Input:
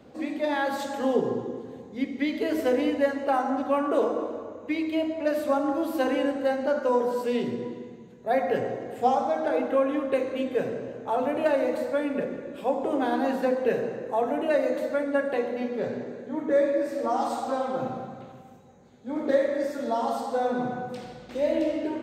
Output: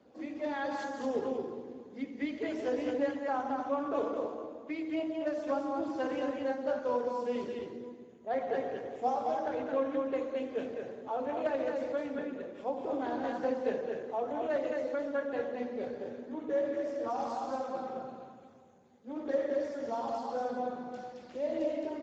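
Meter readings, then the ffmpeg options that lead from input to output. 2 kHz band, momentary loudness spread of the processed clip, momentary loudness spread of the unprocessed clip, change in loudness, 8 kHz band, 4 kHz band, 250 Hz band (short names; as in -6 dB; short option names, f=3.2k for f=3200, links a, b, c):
-9.0 dB, 9 LU, 10 LU, -8.0 dB, n/a, -10.0 dB, -8.5 dB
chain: -af "equalizer=f=130:w=1.7:g=-10,aecho=1:1:217:0.668,volume=-9dB" -ar 16000 -c:a libspeex -b:a 13k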